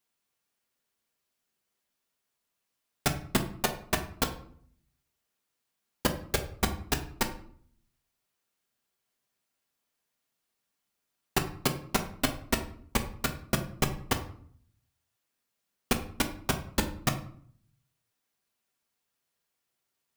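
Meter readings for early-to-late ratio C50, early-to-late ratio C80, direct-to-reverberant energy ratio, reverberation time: 11.5 dB, 15.5 dB, 4.0 dB, 0.60 s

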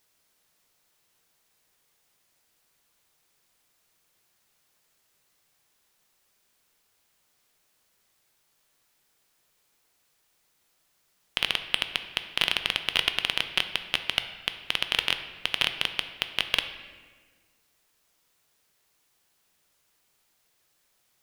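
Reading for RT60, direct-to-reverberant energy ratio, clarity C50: 1.5 s, 8.0 dB, 10.0 dB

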